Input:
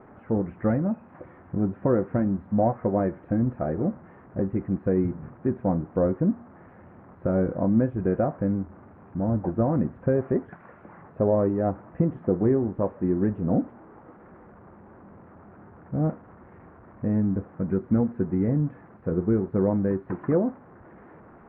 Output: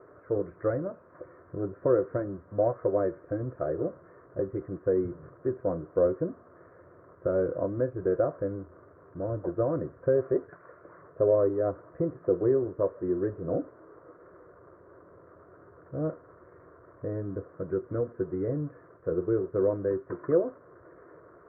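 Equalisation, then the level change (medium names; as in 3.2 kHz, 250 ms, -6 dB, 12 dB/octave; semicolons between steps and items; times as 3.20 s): high-pass 210 Hz 6 dB/octave; low-pass 1.3 kHz 12 dB/octave; static phaser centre 820 Hz, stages 6; +2.0 dB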